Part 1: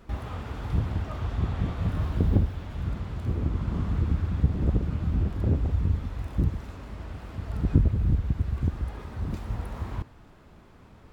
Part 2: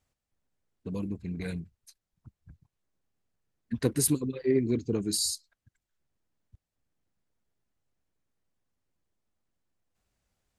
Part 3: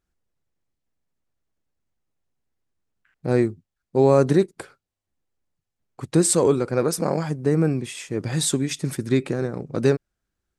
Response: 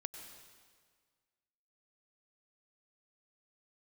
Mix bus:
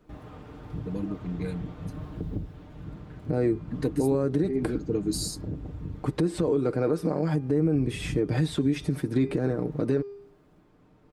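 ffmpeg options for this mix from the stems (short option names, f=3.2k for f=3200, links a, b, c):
-filter_complex "[0:a]acrossover=split=160|3000[a][b][c];[b]acompressor=threshold=-32dB:ratio=2.5[d];[a][d][c]amix=inputs=3:normalize=0,volume=-12dB[e];[1:a]aeval=exprs='0.335*(cos(1*acos(clip(val(0)/0.335,-1,1)))-cos(1*PI/2))+0.00944*(cos(4*acos(clip(val(0)/0.335,-1,1)))-cos(4*PI/2))':c=same,volume=-5.5dB[f];[2:a]bandreject=f=402.7:t=h:w=4,bandreject=f=805.4:t=h:w=4,bandreject=f=1.2081k:t=h:w=4,bandreject=f=1.6108k:t=h:w=4,bandreject=f=2.0135k:t=h:w=4,bandreject=f=2.4162k:t=h:w=4,bandreject=f=2.8189k:t=h:w=4,bandreject=f=3.2216k:t=h:w=4,bandreject=f=3.6243k:t=h:w=4,bandreject=f=4.027k:t=h:w=4,bandreject=f=4.4297k:t=h:w=4,bandreject=f=4.8324k:t=h:w=4,bandreject=f=5.2351k:t=h:w=4,bandreject=f=5.6378k:t=h:w=4,bandreject=f=6.0405k:t=h:w=4,acrossover=split=3600[g][h];[h]acompressor=threshold=-37dB:ratio=4:attack=1:release=60[i];[g][i]amix=inputs=2:normalize=0,equalizer=f=6.9k:t=o:w=0.67:g=-7,adelay=50,volume=1dB[j];[f][j]amix=inputs=2:normalize=0,alimiter=limit=-13.5dB:level=0:latency=1:release=168,volume=0dB[k];[e][k]amix=inputs=2:normalize=0,equalizer=f=310:w=0.63:g=8.5,aecho=1:1:6.6:0.5,alimiter=limit=-15.5dB:level=0:latency=1:release=275"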